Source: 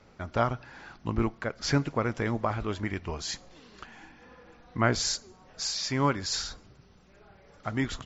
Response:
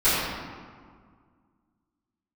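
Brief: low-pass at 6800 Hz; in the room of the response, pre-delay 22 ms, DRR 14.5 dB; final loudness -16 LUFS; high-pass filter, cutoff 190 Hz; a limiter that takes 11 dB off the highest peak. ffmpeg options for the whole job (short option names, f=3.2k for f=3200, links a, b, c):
-filter_complex "[0:a]highpass=190,lowpass=6.8k,alimiter=limit=-19dB:level=0:latency=1,asplit=2[a][b];[1:a]atrim=start_sample=2205,adelay=22[c];[b][c]afir=irnorm=-1:irlink=0,volume=-33dB[d];[a][d]amix=inputs=2:normalize=0,volume=18dB"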